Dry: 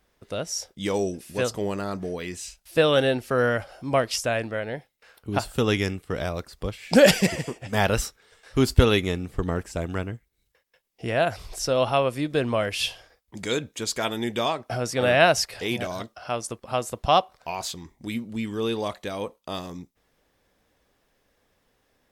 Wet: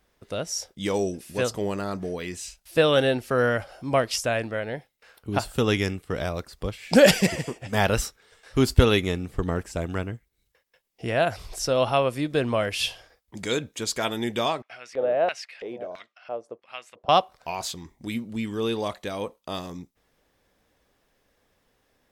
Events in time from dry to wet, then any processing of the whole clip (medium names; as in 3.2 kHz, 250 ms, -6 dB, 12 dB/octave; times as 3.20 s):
14.62–17.09 s: LFO band-pass square 1.5 Hz 520–2300 Hz